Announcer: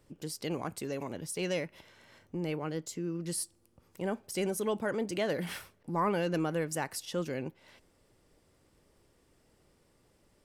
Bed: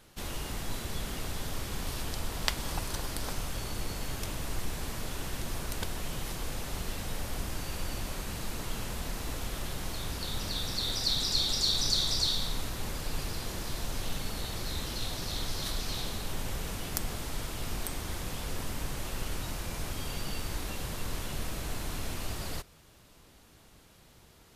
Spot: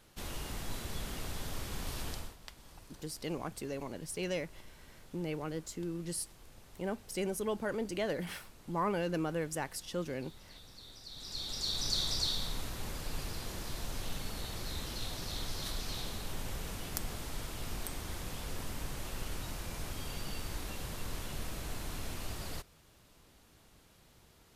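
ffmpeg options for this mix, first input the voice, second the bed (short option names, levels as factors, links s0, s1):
-filter_complex "[0:a]adelay=2800,volume=0.708[s0];[1:a]volume=3.98,afade=t=out:st=2.1:d=0.26:silence=0.149624,afade=t=in:st=11.11:d=0.89:silence=0.158489[s1];[s0][s1]amix=inputs=2:normalize=0"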